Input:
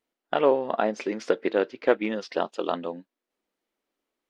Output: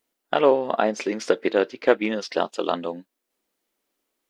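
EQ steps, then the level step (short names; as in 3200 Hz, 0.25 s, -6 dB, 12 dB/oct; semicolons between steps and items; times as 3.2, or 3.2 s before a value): high shelf 5500 Hz +10.5 dB; +3.0 dB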